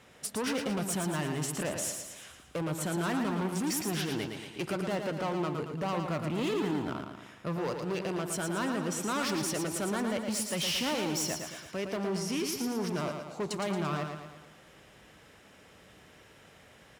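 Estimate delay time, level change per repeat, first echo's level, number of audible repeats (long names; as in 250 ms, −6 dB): 113 ms, −6.0 dB, −6.0 dB, 5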